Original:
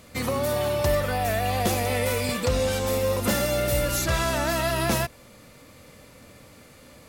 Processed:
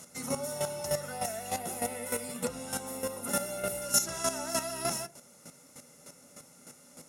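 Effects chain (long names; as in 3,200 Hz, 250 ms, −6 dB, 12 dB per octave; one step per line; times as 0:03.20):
downward compressor 1.5 to 1, threshold −32 dBFS, peak gain reduction 5 dB
drawn EQ curve 170 Hz 0 dB, 3,200 Hz −12 dB, 5,900 Hz +8 dB, 9,800 Hz +14 dB, 15,000 Hz −4 dB
convolution reverb RT60 0.25 s, pre-delay 3 ms, DRR 9.5 dB
square-wave tremolo 3.3 Hz, depth 65%, duty 15%
0:01.58–0:03.82: parametric band 5,900 Hz −9.5 dB 0.83 octaves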